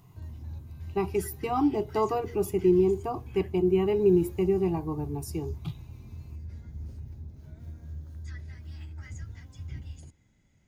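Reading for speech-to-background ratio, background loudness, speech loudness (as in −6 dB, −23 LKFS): 16.0 dB, −43.0 LKFS, −27.0 LKFS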